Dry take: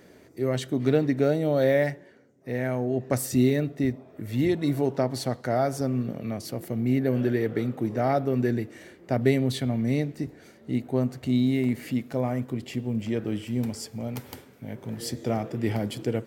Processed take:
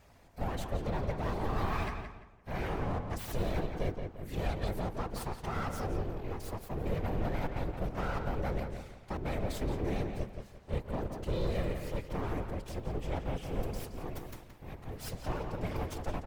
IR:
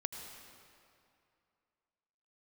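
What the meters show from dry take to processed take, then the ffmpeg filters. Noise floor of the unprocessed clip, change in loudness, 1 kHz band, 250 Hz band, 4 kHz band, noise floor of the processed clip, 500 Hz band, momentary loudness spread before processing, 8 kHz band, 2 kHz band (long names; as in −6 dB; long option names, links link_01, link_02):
−54 dBFS, −10.5 dB, −4.0 dB, −14.0 dB, −8.5 dB, −55 dBFS, −11.5 dB, 12 LU, −11.0 dB, −7.0 dB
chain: -filter_complex "[0:a]alimiter=limit=-17dB:level=0:latency=1:release=161,aeval=exprs='abs(val(0))':channel_layout=same,afftfilt=real='hypot(re,im)*cos(2*PI*random(0))':imag='hypot(re,im)*sin(2*PI*random(1))':win_size=512:overlap=0.75,asplit=2[link_01][link_02];[link_02]adelay=172,lowpass=frequency=3500:poles=1,volume=-6dB,asplit=2[link_03][link_04];[link_04]adelay=172,lowpass=frequency=3500:poles=1,volume=0.33,asplit=2[link_05][link_06];[link_06]adelay=172,lowpass=frequency=3500:poles=1,volume=0.33,asplit=2[link_07][link_08];[link_08]adelay=172,lowpass=frequency=3500:poles=1,volume=0.33[link_09];[link_01][link_03][link_05][link_07][link_09]amix=inputs=5:normalize=0"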